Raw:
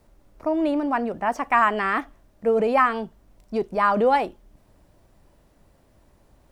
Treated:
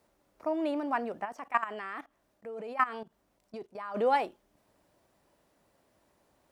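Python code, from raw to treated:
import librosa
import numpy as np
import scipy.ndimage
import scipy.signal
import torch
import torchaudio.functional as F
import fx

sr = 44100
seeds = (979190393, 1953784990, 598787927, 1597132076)

y = fx.highpass(x, sr, hz=380.0, slope=6)
y = fx.level_steps(y, sr, step_db=17, at=(1.24, 3.94), fade=0.02)
y = y * 10.0 ** (-5.5 / 20.0)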